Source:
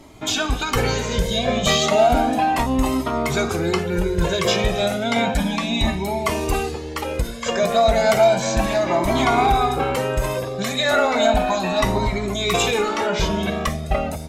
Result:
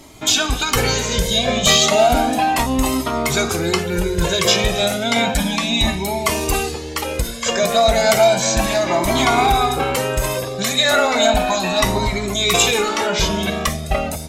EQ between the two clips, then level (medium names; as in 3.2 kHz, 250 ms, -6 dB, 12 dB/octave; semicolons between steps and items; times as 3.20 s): treble shelf 3 kHz +9.5 dB; +1.0 dB